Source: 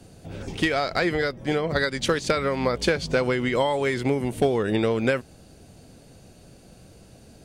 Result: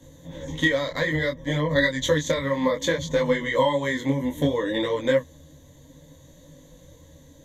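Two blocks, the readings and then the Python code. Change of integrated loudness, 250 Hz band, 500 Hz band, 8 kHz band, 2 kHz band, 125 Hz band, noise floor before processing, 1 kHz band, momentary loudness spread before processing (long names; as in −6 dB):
+0.5 dB, 0.0 dB, 0.0 dB, +1.5 dB, +1.0 dB, +1.0 dB, −51 dBFS, −1.5 dB, 4 LU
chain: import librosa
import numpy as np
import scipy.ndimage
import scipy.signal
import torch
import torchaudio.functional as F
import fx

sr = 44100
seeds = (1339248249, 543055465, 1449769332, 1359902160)

y = fx.ripple_eq(x, sr, per_octave=1.1, db=18)
y = fx.detune_double(y, sr, cents=21)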